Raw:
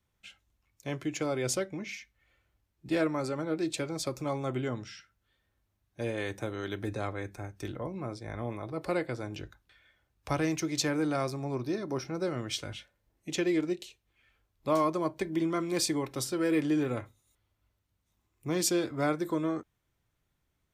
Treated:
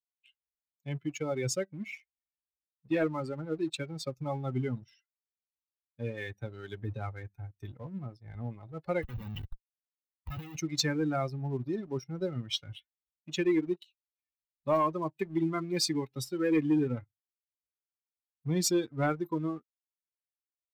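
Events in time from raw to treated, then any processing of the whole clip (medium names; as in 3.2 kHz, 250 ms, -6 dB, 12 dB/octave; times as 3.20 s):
9.02–10.56 s: Schmitt trigger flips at -41 dBFS
whole clip: expander on every frequency bin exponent 2; fifteen-band graphic EQ 160 Hz +5 dB, 4 kHz +4 dB, 10 kHz -7 dB; waveshaping leveller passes 1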